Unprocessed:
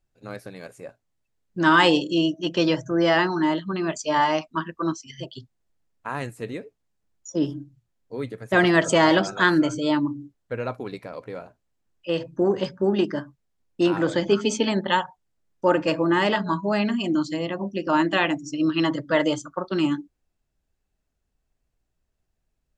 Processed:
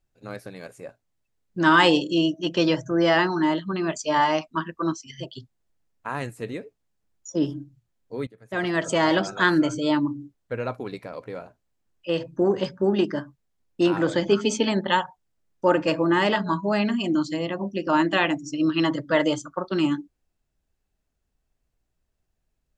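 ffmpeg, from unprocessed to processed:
ffmpeg -i in.wav -filter_complex "[0:a]asplit=2[link_01][link_02];[link_01]atrim=end=8.27,asetpts=PTS-STARTPTS,afade=type=out:start_time=8.266:duration=0.004:curve=hsin:silence=0.11885[link_03];[link_02]atrim=start=8.27,asetpts=PTS-STARTPTS,afade=type=in:duration=1.75:curve=qsin:silence=0.11885[link_04];[link_03][link_04]concat=n=2:v=0:a=1" out.wav

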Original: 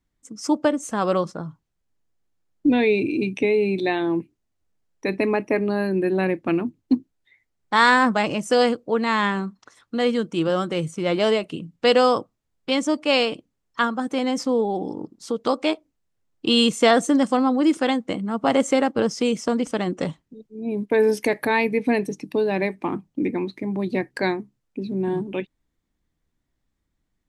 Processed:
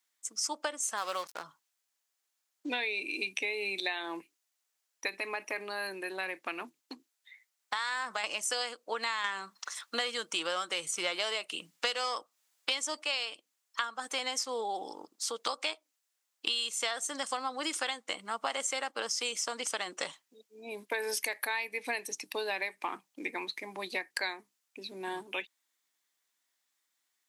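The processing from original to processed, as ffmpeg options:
ffmpeg -i in.wav -filter_complex "[0:a]asplit=3[link_01][link_02][link_03];[link_01]afade=type=out:start_time=0.96:duration=0.02[link_04];[link_02]aeval=exprs='sgn(val(0))*max(abs(val(0))-0.0112,0)':channel_layout=same,afade=type=in:start_time=0.96:duration=0.02,afade=type=out:start_time=1.42:duration=0.02[link_05];[link_03]afade=type=in:start_time=1.42:duration=0.02[link_06];[link_04][link_05][link_06]amix=inputs=3:normalize=0,asettb=1/sr,asplit=3[link_07][link_08][link_09];[link_07]atrim=end=5.074[link_10];[link_08]atrim=start=5.07:end=8.24,asetpts=PTS-STARTPTS,afade=type=in:duration=0.004:curve=qsin,afade=type=out:start_time=3.166:duration=0.004:curve=qsin,acompressor=threshold=-22dB:ratio=6:attack=3.2:release=140:knee=1:detection=peak[link_11];[link_09]atrim=start=8.236[link_12];[link_10][link_11]acrossfade=duration=0.004:curve1=hsin:curve2=qsin[link_13];[link_13][link_12]acrossfade=duration=0.004:curve1=qsin:curve2=hsin,asettb=1/sr,asplit=3[link_14][link_15][link_16];[link_14]atrim=end=9.244[link_17];[link_15]atrim=start=9.24:end=13.03,asetpts=PTS-STARTPTS,afade=type=in:duration=0.004:curve=qsin,afade=type=out:start_time=3.786:duration=0.004:curve=qsin,acontrast=81[link_18];[link_16]atrim=start=13.026[link_19];[link_17][link_18]acrossfade=duration=0.004:curve1=hsin:curve2=qsin[link_20];[link_20][link_19]acrossfade=duration=0.004:curve1=qsin:curve2=hsin,highpass=920,highshelf=frequency=3300:gain=10.5,acompressor=threshold=-30dB:ratio=8" out.wav

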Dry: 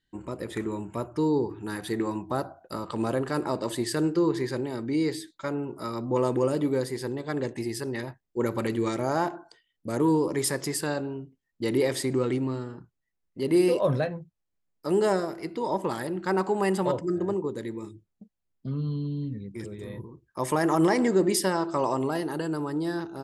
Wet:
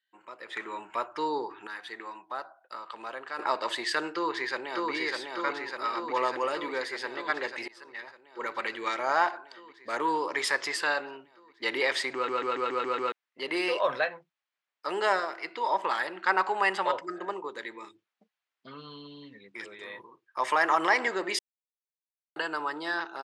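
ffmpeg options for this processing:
ffmpeg -i in.wav -filter_complex "[0:a]asplit=2[link_01][link_02];[link_02]afade=type=in:start_time=4.13:duration=0.01,afade=type=out:start_time=4.92:duration=0.01,aecho=0:1:600|1200|1800|2400|3000|3600|4200|4800|5400|6000|6600|7200:0.841395|0.631046|0.473285|0.354964|0.266223|0.199667|0.14975|0.112313|0.0842345|0.0631759|0.0473819|0.0355364[link_03];[link_01][link_03]amix=inputs=2:normalize=0,asplit=13[link_04][link_05][link_06][link_07][link_08][link_09][link_10][link_11][link_12][link_13][link_14][link_15][link_16];[link_04]atrim=end=1.672[link_17];[link_05]atrim=start=1.668:end=3.392,asetpts=PTS-STARTPTS,volume=-10dB[link_18];[link_06]atrim=start=3.388:end=7.68,asetpts=PTS-STARTPTS,afade=type=out:start_time=4.288:duration=0.004:curve=hsin:silence=0.0841395[link_19];[link_07]atrim=start=7.68:end=12.282,asetpts=PTS-STARTPTS,afade=type=in:duration=1.54:silence=0.0841395[link_20];[link_08]atrim=start=12.138:end=12.282[link_21];[link_09]atrim=start=12.138:end=12.282[link_22];[link_10]atrim=start=12.138:end=12.282[link_23];[link_11]atrim=start=12.138:end=12.282[link_24];[link_12]atrim=start=12.138:end=12.282[link_25];[link_13]atrim=start=12.138:end=12.282[link_26];[link_14]atrim=start=13.118:end=21.39,asetpts=PTS-STARTPTS,afade=type=out:start_time=8.268:duration=0.004:curve=hsin[link_27];[link_15]atrim=start=21.39:end=22.36,asetpts=PTS-STARTPTS,volume=0[link_28];[link_16]atrim=start=22.36,asetpts=PTS-STARTPTS,afade=type=in:duration=0.004:curve=hsin[link_29];[link_17][link_18]acrossfade=duration=0.004:curve1=hsin:curve2=hsin[link_30];[link_19][link_20]concat=n=2:v=0:a=1[link_31];[link_30][link_31]acrossfade=duration=0.004:curve1=hsin:curve2=hsin[link_32];[link_32][link_21]acrossfade=duration=0.004:curve1=hsin:curve2=hsin[link_33];[link_33][link_22]acrossfade=duration=0.004:curve1=hsin:curve2=hsin[link_34];[link_34][link_23]acrossfade=duration=0.004:curve1=hsin:curve2=hsin[link_35];[link_35][link_24]acrossfade=duration=0.004:curve1=hsin:curve2=hsin[link_36];[link_36][link_25]acrossfade=duration=0.004:curve1=hsin:curve2=hsin[link_37];[link_37][link_26]acrossfade=duration=0.004:curve1=hsin:curve2=hsin[link_38];[link_27][link_28][link_29]concat=n=3:v=0:a=1[link_39];[link_38][link_39]acrossfade=duration=0.004:curve1=hsin:curve2=hsin,lowpass=3200,dynaudnorm=framelen=400:gausssize=3:maxgain=11.5dB,highpass=1200" out.wav

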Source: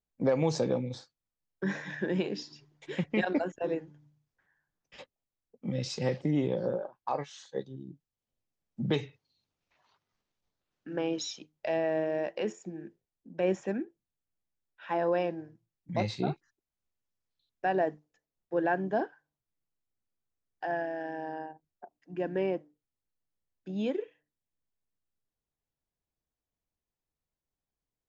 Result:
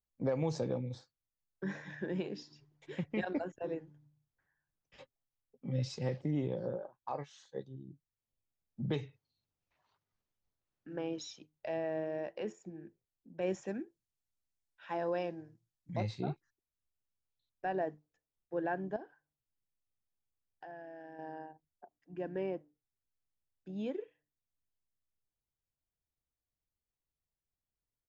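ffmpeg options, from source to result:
ffmpeg -i in.wav -filter_complex "[0:a]asettb=1/sr,asplit=3[link_01][link_02][link_03];[link_01]atrim=end=5.004[link_04];[link_02]atrim=start=5:end=5.96,asetpts=PTS-STARTPTS,afade=type=in:duration=0.004:curve=qsin,afade=type=out:start_time=0.956:duration=0.004:curve=qsin,aecho=1:1:7.4:0.54,atrim=end_sample=42336[link_05];[link_03]atrim=start=5.956[link_06];[link_04][link_05]acrossfade=duration=0.004:curve1=hsin:curve2=qsin[link_07];[link_07][link_06]acrossfade=duration=0.004:curve1=qsin:curve2=hsin,asettb=1/sr,asplit=3[link_08][link_09][link_10];[link_08]atrim=end=13.414[link_11];[link_09]atrim=start=13.41:end=15.97,asetpts=PTS-STARTPTS,afade=type=in:duration=0.004:curve=qsin,afade=type=out:start_time=2.556:duration=0.004:curve=qsin,equalizer=frequency=6300:width=0.58:gain=8.5[link_12];[link_10]atrim=start=15.966[link_13];[link_11][link_12]acrossfade=duration=0.004:curve1=hsin:curve2=qsin[link_14];[link_14][link_13]acrossfade=duration=0.004:curve1=qsin:curve2=hsin,asettb=1/sr,asplit=3[link_15][link_16][link_17];[link_15]atrim=end=18.964[link_18];[link_16]atrim=start=18.96:end=21.19,asetpts=PTS-STARTPTS,afade=type=in:duration=0.004:curve=qsin,afade=type=out:start_time=2.226:duration=0.004:curve=qsin,acompressor=threshold=-40dB:ratio=3:attack=3.2:release=140:knee=1:detection=peak[link_19];[link_17]atrim=start=21.186[link_20];[link_18][link_19]acrossfade=duration=0.004:curve1=hsin:curve2=qsin[link_21];[link_21][link_20]acrossfade=duration=0.004:curve1=qsin:curve2=hsin,firequalizer=gain_entry='entry(120,0);entry(180,-5);entry(2800,-8)':delay=0.05:min_phase=1,volume=-1.5dB" out.wav

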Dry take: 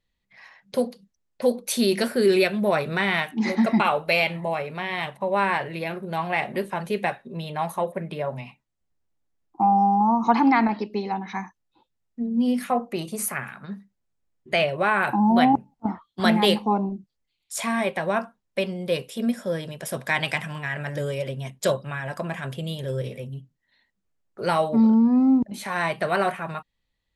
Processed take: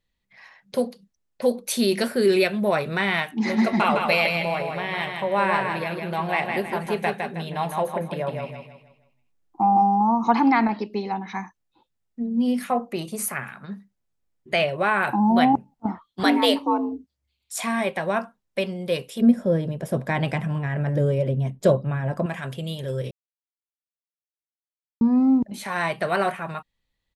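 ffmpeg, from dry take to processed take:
ffmpeg -i in.wav -filter_complex "[0:a]asplit=3[link_01][link_02][link_03];[link_01]afade=type=out:start_time=3.47:duration=0.02[link_04];[link_02]aecho=1:1:158|316|474|632|790:0.596|0.22|0.0815|0.0302|0.0112,afade=type=in:start_time=3.47:duration=0.02,afade=type=out:start_time=9.81:duration=0.02[link_05];[link_03]afade=type=in:start_time=9.81:duration=0.02[link_06];[link_04][link_05][link_06]amix=inputs=3:normalize=0,asettb=1/sr,asplit=3[link_07][link_08][link_09];[link_07]atrim=end=16.234[link_10];[link_08]atrim=start=16.23:end=17.62,asetpts=PTS-STARTPTS,afade=type=in:duration=0.004:curve=qsin,afade=type=out:start_time=1.386:duration=0.004:curve=qsin,afreqshift=68[link_11];[link_09]atrim=start=17.616[link_12];[link_10][link_11]acrossfade=duration=0.004:curve1=hsin:curve2=qsin[link_13];[link_13][link_12]acrossfade=duration=0.004:curve1=qsin:curve2=hsin,asettb=1/sr,asplit=3[link_14][link_15][link_16];[link_14]atrim=end=19.214[link_17];[link_15]atrim=start=19.21:end=22.26,asetpts=PTS-STARTPTS,afade=type=in:duration=0.004:curve=qsin,afade=type=out:start_time=3.046:duration=0.004:curve=qsin,tiltshelf=frequency=940:gain=9.5[link_18];[link_16]atrim=start=22.256[link_19];[link_17][link_18]acrossfade=duration=0.004:curve1=hsin:curve2=qsin[link_20];[link_20][link_19]acrossfade=duration=0.004:curve1=qsin:curve2=hsin,asplit=3[link_21][link_22][link_23];[link_21]atrim=end=23.11,asetpts=PTS-STARTPTS,afade=type=out:start_time=23.106:duration=0.004:curve=hsin[link_24];[link_22]atrim=start=23.11:end=25.01,asetpts=PTS-STARTPTS,volume=0[link_25];[link_23]atrim=start=25.01,asetpts=PTS-STARTPTS,afade=type=in:duration=0.004:curve=hsin[link_26];[link_24][link_25][link_26]concat=n=3:v=0:a=1" out.wav

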